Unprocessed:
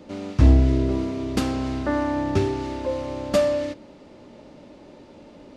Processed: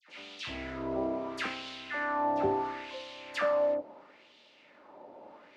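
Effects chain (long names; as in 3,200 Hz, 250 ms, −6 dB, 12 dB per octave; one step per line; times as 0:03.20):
auto-filter band-pass sine 0.74 Hz 720–3,400 Hz
all-pass dispersion lows, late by 85 ms, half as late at 1,600 Hz
level +4.5 dB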